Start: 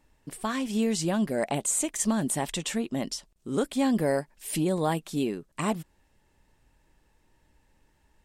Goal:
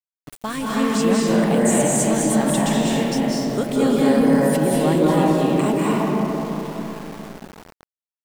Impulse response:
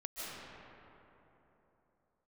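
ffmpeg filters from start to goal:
-filter_complex "[1:a]atrim=start_sample=2205,asetrate=33516,aresample=44100[s0];[0:a][s0]afir=irnorm=-1:irlink=0,acontrast=75,aeval=exprs='val(0)*gte(abs(val(0)),0.0224)':c=same"

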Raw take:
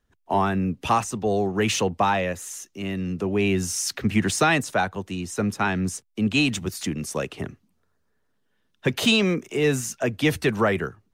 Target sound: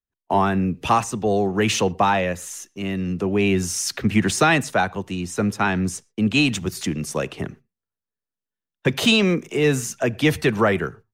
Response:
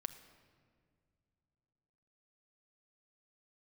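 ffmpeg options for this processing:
-filter_complex "[0:a]agate=range=0.0501:threshold=0.00631:ratio=16:detection=peak,asplit=2[s0][s1];[1:a]atrim=start_sample=2205,afade=t=out:st=0.18:d=0.01,atrim=end_sample=8379,highshelf=f=9000:g=-11.5[s2];[s1][s2]afir=irnorm=-1:irlink=0,volume=0.562[s3];[s0][s3]amix=inputs=2:normalize=0"

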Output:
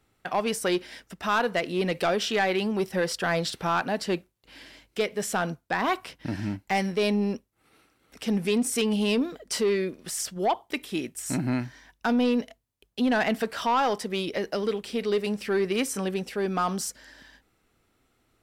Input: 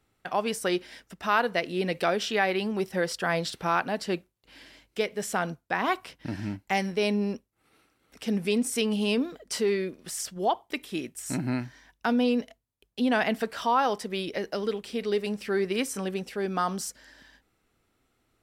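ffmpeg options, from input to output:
-af "asoftclip=type=tanh:threshold=0.106,volume=1.41"

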